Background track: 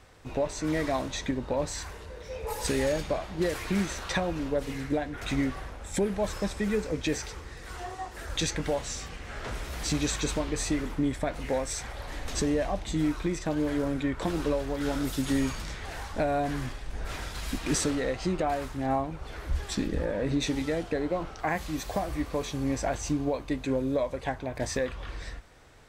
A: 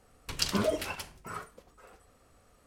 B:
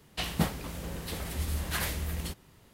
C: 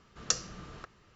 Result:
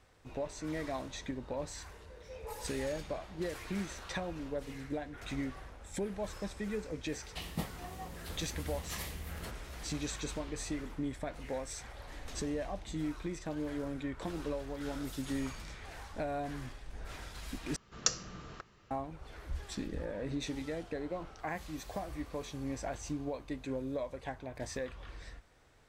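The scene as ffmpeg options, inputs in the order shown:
-filter_complex "[3:a]asplit=2[a][b];[0:a]volume=-9.5dB[c];[2:a]asuperstop=centerf=1500:order=4:qfactor=5.3[d];[a]lowpass=f=2.1k:t=q:w=0.5098,lowpass=f=2.1k:t=q:w=0.6013,lowpass=f=2.1k:t=q:w=0.9,lowpass=f=2.1k:t=q:w=2.563,afreqshift=-2500[e];[c]asplit=2[f][g];[f]atrim=end=17.764[h];[b]atrim=end=1.15,asetpts=PTS-STARTPTS,volume=-1dB[i];[g]atrim=start=18.906[j];[d]atrim=end=2.73,asetpts=PTS-STARTPTS,volume=-9.5dB,afade=t=in:d=0.004:c=hsin,afade=t=out:st=2.726:d=0.004:c=hsin,adelay=7180[k];[e]atrim=end=1.15,asetpts=PTS-STARTPTS,volume=-15.5dB,afade=t=in:d=0.004:c=hsin,afade=t=out:st=1.146:d=0.004:c=hsin,adelay=15160[l];[h][i]acrossfade=d=0.004:c1=hsin:c2=hsin[m];[m][j]acrossfade=d=0.004:c1=hsin:c2=hsin[n];[n][k][l]amix=inputs=3:normalize=0"

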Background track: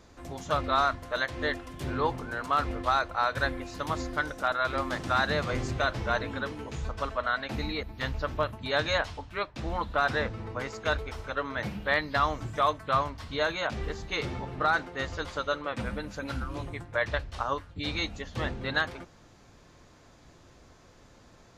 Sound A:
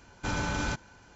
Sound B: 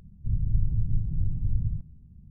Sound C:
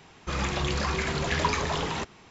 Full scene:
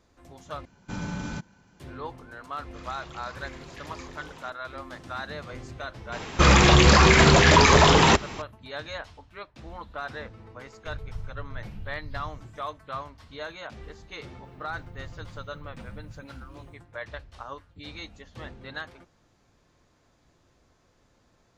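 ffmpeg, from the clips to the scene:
-filter_complex "[3:a]asplit=2[a][b];[2:a]asplit=2[c][d];[0:a]volume=-9dB[e];[1:a]equalizer=f=180:w=1.4:g=12[f];[b]alimiter=level_in=19.5dB:limit=-1dB:release=50:level=0:latency=1[g];[d]aemphasis=mode=production:type=bsi[h];[e]asplit=2[i][j];[i]atrim=end=0.654[k];[f]atrim=end=1.15,asetpts=PTS-STARTPTS,volume=-7dB[l];[j]atrim=start=1.796[m];[a]atrim=end=2.3,asetpts=PTS-STARTPTS,volume=-16.5dB,afade=t=in:d=0.004:c=hsin,afade=t=out:st=2.296:d=0.004:c=hsin,adelay=2460[n];[g]atrim=end=2.3,asetpts=PTS-STARTPTS,volume=-5dB,afade=t=in:d=0.004:c=hsin,afade=t=out:st=2.296:d=0.004:c=hsin,adelay=6120[o];[c]atrim=end=2.3,asetpts=PTS-STARTPTS,volume=-13dB,afade=t=in:d=0.004:c=hsin,afade=t=out:st=2.296:d=0.004:c=hsin,adelay=10610[p];[h]atrim=end=2.3,asetpts=PTS-STARTPTS,volume=-5.5dB,afade=t=in:d=0.004:c=hsin,afade=t=out:st=2.296:d=0.004:c=hsin,adelay=636804S[q];[k][l]acrossfade=d=0.004:c1=hsin:c2=hsin[r];[r][m]acrossfade=d=0.004:c1=hsin:c2=hsin[s];[s][n][o][p][q]amix=inputs=5:normalize=0"

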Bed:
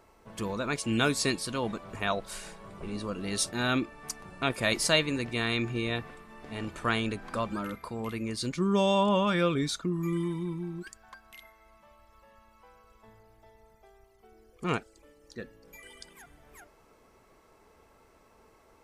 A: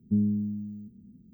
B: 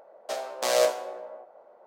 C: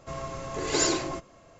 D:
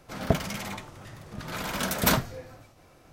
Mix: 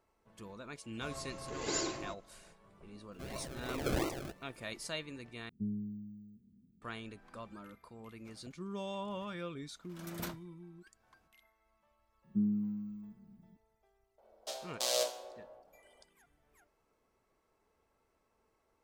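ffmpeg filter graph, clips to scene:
-filter_complex "[3:a]asplit=2[a][b];[1:a]asplit=2[c][d];[0:a]volume=-16dB[e];[b]acrusher=samples=37:mix=1:aa=0.000001:lfo=1:lforange=22.2:lforate=2.9[f];[4:a]aeval=exprs='val(0)*pow(10,-28*(0.5-0.5*cos(2*PI*1*n/s))/20)':c=same[g];[d]aecho=1:1:5.7:0.94[h];[2:a]highshelf=f=2.6k:t=q:w=1.5:g=8[i];[e]asplit=2[j][k];[j]atrim=end=5.494[l];[c]atrim=end=1.33,asetpts=PTS-STARTPTS,volume=-13dB[m];[k]atrim=start=6.816[n];[a]atrim=end=1.59,asetpts=PTS-STARTPTS,volume=-10.5dB,afade=t=in:d=0.004:c=hsin,afade=t=out:st=1.586:d=0.004:c=hsin,adelay=940[o];[f]atrim=end=1.59,asetpts=PTS-STARTPTS,volume=-8.5dB,afade=t=in:d=0.004:c=hsin,afade=t=out:st=1.586:d=0.004:c=hsin,adelay=3120[p];[g]atrim=end=3.12,asetpts=PTS-STARTPTS,volume=-18dB,afade=t=in:d=0.004:c=hsin,afade=t=out:st=3.116:d=0.004:c=hsin,adelay=8160[q];[h]atrim=end=1.33,asetpts=PTS-STARTPTS,volume=-10.5dB,afade=t=in:d=0.004:c=hsin,afade=t=out:st=1.326:d=0.004:c=hsin,adelay=12240[r];[i]atrim=end=1.86,asetpts=PTS-STARTPTS,volume=-12dB,afade=t=in:d=0.004:c=hsin,afade=t=out:st=1.856:d=0.004:c=hsin,adelay=14180[s];[l][m]acrossfade=d=0.004:c1=hsin:c2=hsin[t];[t][n]acrossfade=d=0.004:c1=hsin:c2=hsin[u];[u][o][p][q][r][s]amix=inputs=6:normalize=0"

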